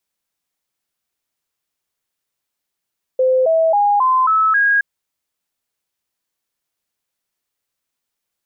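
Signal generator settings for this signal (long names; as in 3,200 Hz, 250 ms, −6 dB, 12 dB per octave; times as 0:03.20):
stepped sweep 516 Hz up, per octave 3, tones 6, 0.27 s, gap 0.00 s −11 dBFS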